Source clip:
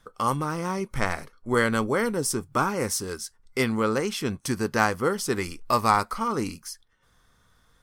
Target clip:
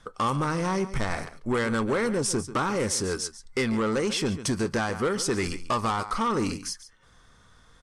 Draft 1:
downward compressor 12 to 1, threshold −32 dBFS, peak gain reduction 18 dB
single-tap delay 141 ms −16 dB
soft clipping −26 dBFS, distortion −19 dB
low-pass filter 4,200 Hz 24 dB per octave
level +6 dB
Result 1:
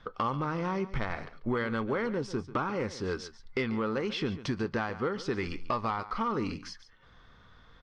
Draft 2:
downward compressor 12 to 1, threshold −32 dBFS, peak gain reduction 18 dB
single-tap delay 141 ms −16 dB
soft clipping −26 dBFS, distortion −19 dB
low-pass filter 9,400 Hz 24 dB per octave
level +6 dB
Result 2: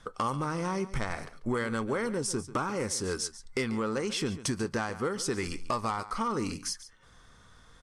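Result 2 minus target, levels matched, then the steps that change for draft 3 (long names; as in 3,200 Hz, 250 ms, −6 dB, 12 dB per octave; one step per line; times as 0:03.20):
downward compressor: peak gain reduction +8 dB
change: downward compressor 12 to 1, threshold −23.5 dBFS, peak gain reduction 10.5 dB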